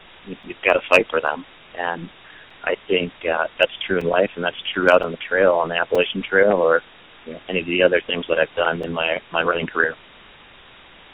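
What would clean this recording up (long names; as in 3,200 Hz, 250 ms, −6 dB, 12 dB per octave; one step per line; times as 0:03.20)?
repair the gap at 0:00.43/0:01.27/0:02.50/0:04.01/0:05.03/0:05.95/0:08.83, 4.3 ms
noise reduction from a noise print 18 dB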